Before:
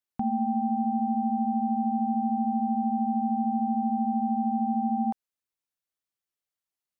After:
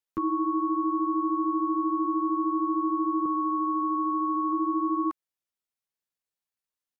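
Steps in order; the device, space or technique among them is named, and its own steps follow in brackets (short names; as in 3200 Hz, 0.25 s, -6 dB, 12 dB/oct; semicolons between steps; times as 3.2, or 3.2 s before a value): 3.25–4.53 doubler 15 ms -3 dB; chipmunk voice (pitch shift +6 st)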